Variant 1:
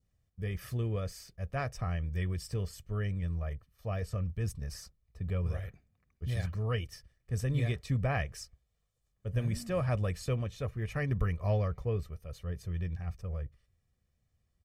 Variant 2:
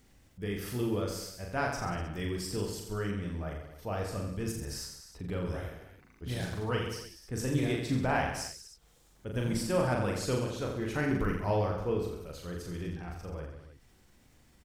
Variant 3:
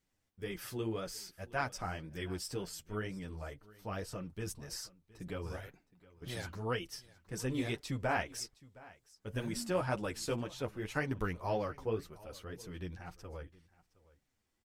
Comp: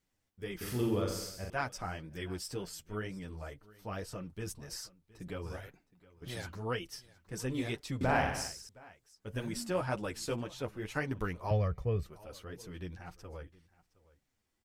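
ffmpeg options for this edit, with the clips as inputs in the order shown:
-filter_complex "[1:a]asplit=2[a][b];[2:a]asplit=4[c][d][e][f];[c]atrim=end=0.612[g];[a]atrim=start=0.608:end=1.502[h];[d]atrim=start=1.498:end=8.012[i];[b]atrim=start=8.008:end=8.692[j];[e]atrim=start=8.688:end=11.512[k];[0:a]atrim=start=11.508:end=12.062[l];[f]atrim=start=12.058[m];[g][h]acrossfade=d=0.004:c1=hsin:c2=hsin[n];[n][i]acrossfade=d=0.004:c1=hsin:c2=hsin[o];[o][j]acrossfade=d=0.004:c1=hsin:c2=hsin[p];[p][k]acrossfade=d=0.004:c1=hsin:c2=hsin[q];[q][l]acrossfade=d=0.004:c1=hsin:c2=hsin[r];[r][m]acrossfade=d=0.004:c1=hsin:c2=hsin"

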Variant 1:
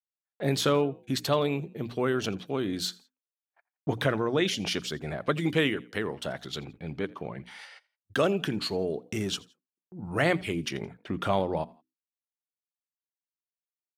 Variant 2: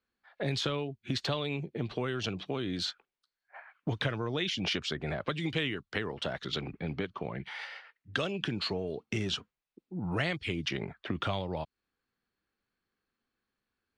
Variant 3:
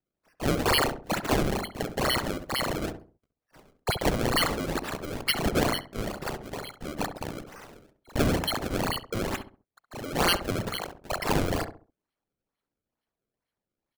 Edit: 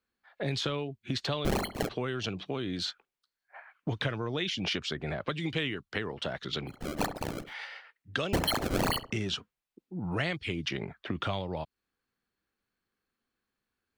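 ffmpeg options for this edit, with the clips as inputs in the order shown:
-filter_complex "[2:a]asplit=3[a][b][c];[1:a]asplit=4[d][e][f][g];[d]atrim=end=1.452[h];[a]atrim=start=1.448:end=1.892[i];[e]atrim=start=1.888:end=6.82[j];[b]atrim=start=6.66:end=7.55[k];[f]atrim=start=7.39:end=8.332[l];[c]atrim=start=8.328:end=9.122[m];[g]atrim=start=9.118[n];[h][i]acrossfade=d=0.004:c1=hsin:c2=hsin[o];[o][j]acrossfade=d=0.004:c1=hsin:c2=hsin[p];[p][k]acrossfade=d=0.16:c1=tri:c2=tri[q];[q][l]acrossfade=d=0.16:c1=tri:c2=tri[r];[r][m]acrossfade=d=0.004:c1=hsin:c2=hsin[s];[s][n]acrossfade=d=0.004:c1=hsin:c2=hsin"

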